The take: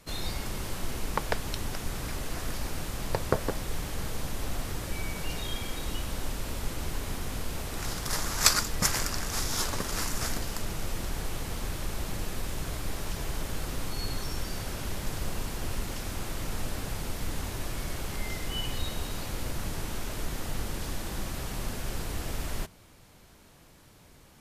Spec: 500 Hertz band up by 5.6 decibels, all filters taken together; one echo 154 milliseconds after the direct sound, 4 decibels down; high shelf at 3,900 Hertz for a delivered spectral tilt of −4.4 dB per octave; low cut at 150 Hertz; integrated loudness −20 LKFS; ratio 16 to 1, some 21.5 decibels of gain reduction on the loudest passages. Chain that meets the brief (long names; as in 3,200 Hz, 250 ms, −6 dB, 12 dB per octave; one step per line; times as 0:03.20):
high-pass filter 150 Hz
parametric band 500 Hz +7 dB
high-shelf EQ 3,900 Hz −6.5 dB
downward compressor 16 to 1, threshold −41 dBFS
single-tap delay 154 ms −4 dB
level +23.5 dB